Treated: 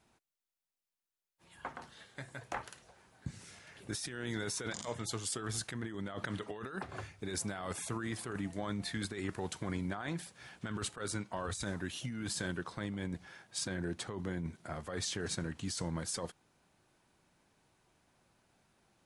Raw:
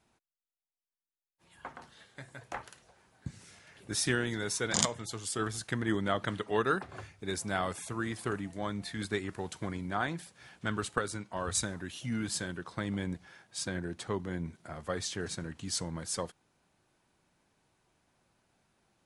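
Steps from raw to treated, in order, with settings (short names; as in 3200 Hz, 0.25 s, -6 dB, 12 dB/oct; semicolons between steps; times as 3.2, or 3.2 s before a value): negative-ratio compressor -37 dBFS, ratio -1; gain -1.5 dB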